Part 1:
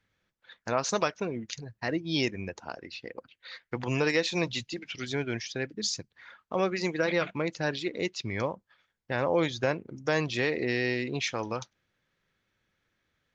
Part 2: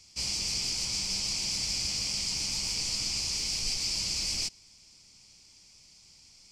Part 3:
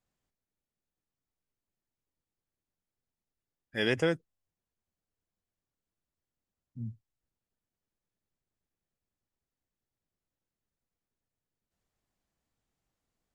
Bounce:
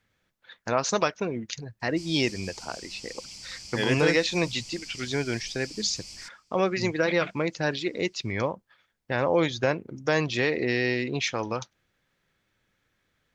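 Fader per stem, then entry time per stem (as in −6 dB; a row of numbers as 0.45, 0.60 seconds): +3.0, −12.0, +2.0 decibels; 0.00, 1.80, 0.00 seconds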